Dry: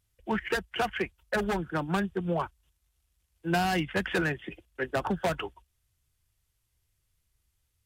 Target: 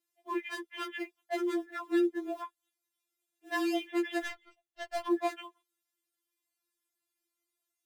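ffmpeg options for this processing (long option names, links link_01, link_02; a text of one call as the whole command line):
ffmpeg -i in.wav -filter_complex "[0:a]afreqshift=150,asplit=3[link_01][link_02][link_03];[link_01]afade=type=out:start_time=4.24:duration=0.02[link_04];[link_02]aeval=exprs='0.158*(cos(1*acos(clip(val(0)/0.158,-1,1)))-cos(1*PI/2))+0.00224*(cos(4*acos(clip(val(0)/0.158,-1,1)))-cos(4*PI/2))+0.0282*(cos(7*acos(clip(val(0)/0.158,-1,1)))-cos(7*PI/2))+0.00126*(cos(8*acos(clip(val(0)/0.158,-1,1)))-cos(8*PI/2))':channel_layout=same,afade=type=in:start_time=4.24:duration=0.02,afade=type=out:start_time=5.06:duration=0.02[link_05];[link_03]afade=type=in:start_time=5.06:duration=0.02[link_06];[link_04][link_05][link_06]amix=inputs=3:normalize=0,asplit=2[link_07][link_08];[link_08]acrusher=bits=5:mode=log:mix=0:aa=0.000001,volume=-4dB[link_09];[link_07][link_09]amix=inputs=2:normalize=0,afftfilt=real='re*4*eq(mod(b,16),0)':imag='im*4*eq(mod(b,16),0)':win_size=2048:overlap=0.75,volume=-8.5dB" out.wav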